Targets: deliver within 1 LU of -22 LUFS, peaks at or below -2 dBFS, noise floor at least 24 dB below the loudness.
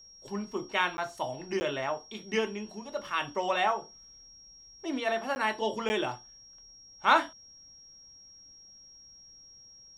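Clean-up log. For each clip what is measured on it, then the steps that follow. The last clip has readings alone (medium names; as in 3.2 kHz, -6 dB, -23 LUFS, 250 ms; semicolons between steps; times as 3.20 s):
dropouts 4; longest dropout 10 ms; steady tone 5.6 kHz; tone level -51 dBFS; loudness -31.0 LUFS; peak level -8.5 dBFS; loudness target -22.0 LUFS
-> interpolate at 0.97/1.60/5.35/5.89 s, 10 ms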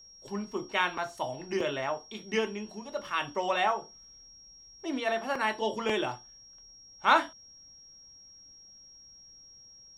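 dropouts 0; steady tone 5.6 kHz; tone level -51 dBFS
-> band-stop 5.6 kHz, Q 30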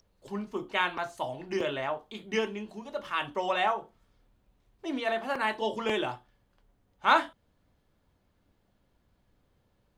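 steady tone not found; loudness -31.0 LUFS; peak level -9.0 dBFS; loudness target -22.0 LUFS
-> trim +9 dB; peak limiter -2 dBFS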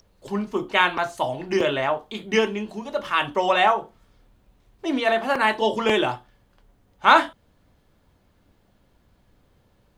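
loudness -22.5 LUFS; peak level -2.0 dBFS; noise floor -63 dBFS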